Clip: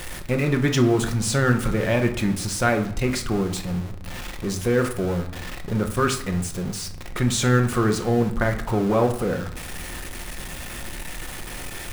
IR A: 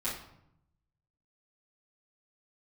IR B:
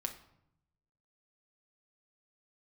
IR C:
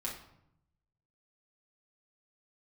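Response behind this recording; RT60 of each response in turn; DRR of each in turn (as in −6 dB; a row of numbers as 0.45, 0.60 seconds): B; 0.75, 0.75, 0.75 seconds; −12.5, 4.5, −4.0 decibels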